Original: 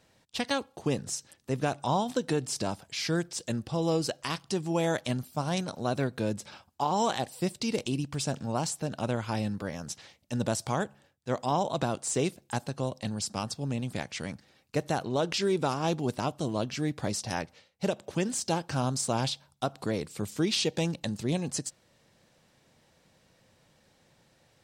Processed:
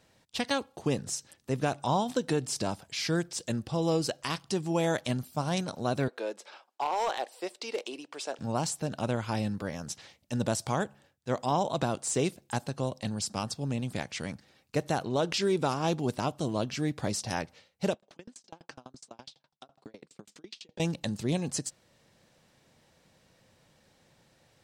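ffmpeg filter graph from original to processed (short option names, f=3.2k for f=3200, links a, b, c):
-filter_complex "[0:a]asettb=1/sr,asplit=3[a][b][c];[a]atrim=end=6.084[d];[b]atrim=start=6.08:end=8.39,asetpts=PTS-STARTPTS,afade=t=in:d=0.004:c=qsin,afade=t=out:st=2.306:d=0.004:c=qsin,highpass=f=390:w=0.5412,highpass=f=390:w=1.3066,highshelf=f=5.9k:g=-12,asoftclip=type=hard:threshold=-23.5dB[e];[c]atrim=start=8.386[f];[d][e]acrossfade=d=0.004:c1=hsin:c2=qsin[g];[g][f]acrossfade=d=0.004:c1=qsin:c2=hsin,asettb=1/sr,asplit=3[h][i][j];[h]atrim=end=17.944[k];[i]atrim=start=17.94:end=20.8,asetpts=PTS-STARTPTS,afade=t=in:d=0.004:c=qsin,afade=t=out:st=2.856:d=0.004:c=qsin,acompressor=threshold=-34dB:ratio=10:attack=3.2:release=140:knee=1:detection=peak,highpass=210,lowpass=6.2k,aeval=exprs='val(0)*pow(10,-35*if(lt(mod(12*n/s,1),2*abs(12)/1000),1-mod(12*n/s,1)/(2*abs(12)/1000),(mod(12*n/s,1)-2*abs(12)/1000)/(1-2*abs(12)/1000))/20)':c=same[l];[j]atrim=start=20.796[m];[k][l]acrossfade=d=0.004:c1=hsin:c2=qsin[n];[n][m]acrossfade=d=0.004:c1=qsin:c2=hsin"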